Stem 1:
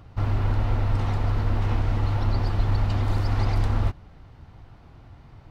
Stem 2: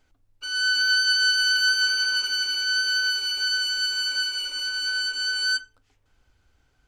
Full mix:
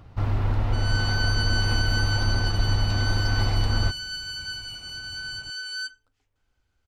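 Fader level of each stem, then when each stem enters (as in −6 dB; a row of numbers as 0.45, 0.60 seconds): −0.5, −8.5 decibels; 0.00, 0.30 seconds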